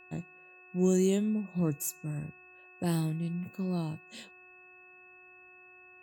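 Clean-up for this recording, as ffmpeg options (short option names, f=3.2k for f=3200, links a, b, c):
-af "bandreject=f=365.4:t=h:w=4,bandreject=f=730.8:t=h:w=4,bandreject=f=1.0962k:t=h:w=4,bandreject=f=1.4616k:t=h:w=4,bandreject=f=1.827k:t=h:w=4,bandreject=f=2.6k:w=30"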